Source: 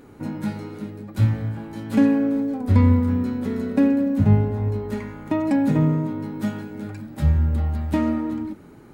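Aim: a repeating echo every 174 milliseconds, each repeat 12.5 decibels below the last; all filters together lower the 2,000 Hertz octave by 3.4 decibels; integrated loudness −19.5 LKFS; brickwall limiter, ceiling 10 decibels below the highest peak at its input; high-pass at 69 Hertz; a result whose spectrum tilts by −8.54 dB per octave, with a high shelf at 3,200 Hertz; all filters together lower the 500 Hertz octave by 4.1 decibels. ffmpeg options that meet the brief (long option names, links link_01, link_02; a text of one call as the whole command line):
ffmpeg -i in.wav -af "highpass=69,equalizer=frequency=500:width_type=o:gain=-5,equalizer=frequency=2000:width_type=o:gain=-5,highshelf=frequency=3200:gain=3.5,alimiter=limit=-16dB:level=0:latency=1,aecho=1:1:174|348|522:0.237|0.0569|0.0137,volume=6.5dB" out.wav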